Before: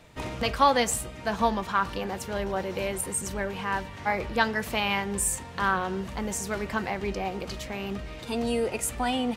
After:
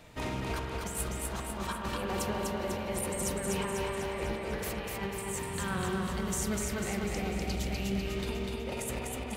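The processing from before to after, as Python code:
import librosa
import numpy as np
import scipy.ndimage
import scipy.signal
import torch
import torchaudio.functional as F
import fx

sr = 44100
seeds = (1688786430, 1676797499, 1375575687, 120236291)

y = fx.peak_eq(x, sr, hz=1000.0, db=-13.0, octaves=2.0, at=(5.53, 8.05))
y = fx.over_compress(y, sr, threshold_db=-33.0, ratio=-0.5)
y = fx.high_shelf(y, sr, hz=12000.0, db=5.5)
y = fx.echo_feedback(y, sr, ms=248, feedback_pct=57, wet_db=-3.0)
y = fx.rev_spring(y, sr, rt60_s=3.3, pass_ms=(46,), chirp_ms=30, drr_db=2.0)
y = y * librosa.db_to_amplitude(-5.0)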